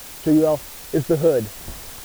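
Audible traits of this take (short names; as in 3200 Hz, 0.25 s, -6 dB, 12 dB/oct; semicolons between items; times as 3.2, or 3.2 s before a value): a quantiser's noise floor 6-bit, dither triangular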